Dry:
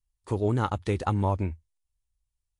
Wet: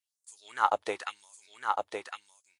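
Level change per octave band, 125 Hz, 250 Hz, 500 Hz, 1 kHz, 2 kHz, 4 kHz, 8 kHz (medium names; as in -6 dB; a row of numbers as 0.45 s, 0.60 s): under -35 dB, -19.5 dB, -5.5 dB, +3.0 dB, +4.5 dB, +2.5 dB, no reading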